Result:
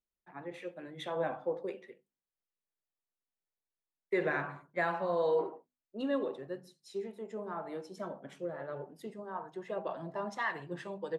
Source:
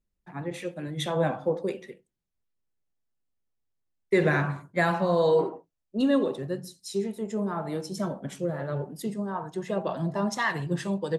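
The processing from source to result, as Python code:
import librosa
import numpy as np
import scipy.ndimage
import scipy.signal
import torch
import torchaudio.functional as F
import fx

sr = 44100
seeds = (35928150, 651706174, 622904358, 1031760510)

y = fx.bass_treble(x, sr, bass_db=-12, treble_db=-13)
y = fx.hum_notches(y, sr, base_hz=50, count=5)
y = y * librosa.db_to_amplitude(-6.5)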